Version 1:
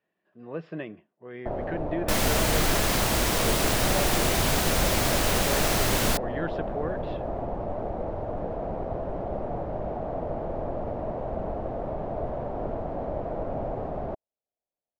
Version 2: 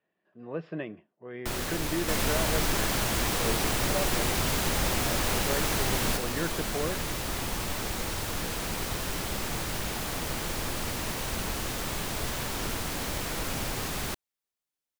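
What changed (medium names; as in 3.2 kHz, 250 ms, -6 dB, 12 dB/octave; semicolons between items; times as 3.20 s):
first sound: remove resonant low-pass 650 Hz, resonance Q 3.9; second sound -4.5 dB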